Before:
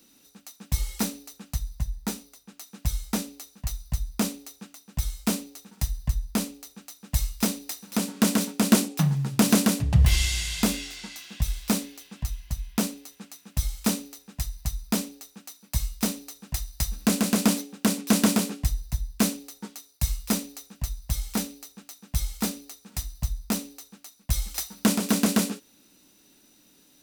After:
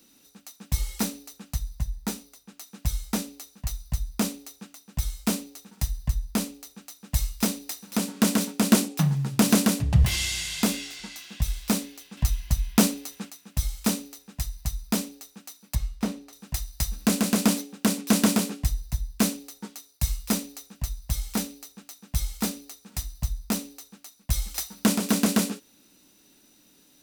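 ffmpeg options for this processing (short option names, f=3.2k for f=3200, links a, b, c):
-filter_complex "[0:a]asettb=1/sr,asplit=3[a][b][c];[a]atrim=end=10.044[d];[b]atrim=start=10.04:end=11,asetpts=PTS-STARTPTS,afade=t=in:d=0.004:c=qsin,afade=t=out:st=0.956:d=0.004:c=qsin,highpass=110[e];[c]atrim=start=10.996[f];[d][e]acrossfade=d=0.004:c1=hsin:c2=qsin[g];[g][f]acrossfade=d=0.004:c1=qsin:c2=hsin,asettb=1/sr,asplit=3[h][i][j];[h]atrim=end=12.174[k];[i]atrim=start=12.17:end=13.3,asetpts=PTS-STARTPTS,afade=t=in:d=0.004:c=qsin,afade=t=out:st=1.126:d=0.004:c=qsin,acontrast=77[l];[j]atrim=start=13.296[m];[k][l]acrossfade=d=0.004:c1=hsin:c2=qsin[n];[n][m]acrossfade=d=0.004:c1=qsin:c2=hsin,asettb=1/sr,asplit=3[o][p][q];[o]atrim=end=15.754[r];[p]atrim=start=15.75:end=16.33,asetpts=PTS-STARTPTS,afade=t=in:d=0.004:c=qsin,afade=t=out:st=0.576:d=0.004:c=qsin,lowpass=f=1.7k:p=1[s];[q]atrim=start=16.326[t];[r][s]acrossfade=d=0.004:c1=hsin:c2=qsin[u];[u][t]acrossfade=d=0.004:c1=qsin:c2=hsin"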